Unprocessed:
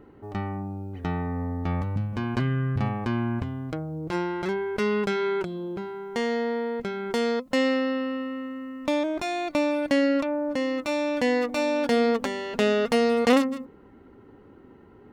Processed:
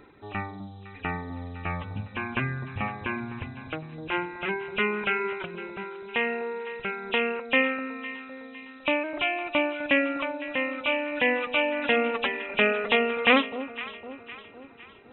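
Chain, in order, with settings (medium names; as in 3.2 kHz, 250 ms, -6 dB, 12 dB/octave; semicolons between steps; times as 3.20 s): knee-point frequency compression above 2.3 kHz 4:1; tilt shelf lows -8 dB, about 1.2 kHz; hum notches 60/120/180/240 Hz; reverb removal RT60 1.2 s; echo whose repeats swap between lows and highs 254 ms, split 870 Hz, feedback 68%, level -11.5 dB; trim +4 dB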